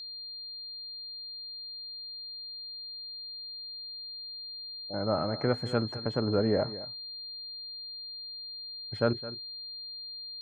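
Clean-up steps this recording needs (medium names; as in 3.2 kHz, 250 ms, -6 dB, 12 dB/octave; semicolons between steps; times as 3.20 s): band-stop 4.2 kHz, Q 30; inverse comb 214 ms -15.5 dB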